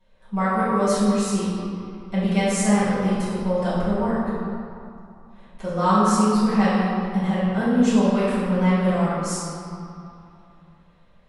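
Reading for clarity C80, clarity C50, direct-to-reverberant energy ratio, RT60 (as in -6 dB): -1.0 dB, -3.5 dB, -14.5 dB, 2.7 s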